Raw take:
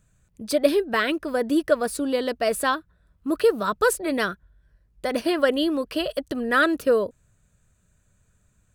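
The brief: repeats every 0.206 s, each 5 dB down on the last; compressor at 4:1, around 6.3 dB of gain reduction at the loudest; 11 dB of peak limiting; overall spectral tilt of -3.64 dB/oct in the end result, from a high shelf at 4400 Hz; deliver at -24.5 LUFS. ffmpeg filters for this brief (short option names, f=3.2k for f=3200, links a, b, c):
-af "highshelf=f=4.4k:g=-3.5,acompressor=threshold=-21dB:ratio=4,alimiter=limit=-22.5dB:level=0:latency=1,aecho=1:1:206|412|618|824|1030|1236|1442:0.562|0.315|0.176|0.0988|0.0553|0.031|0.0173,volume=5.5dB"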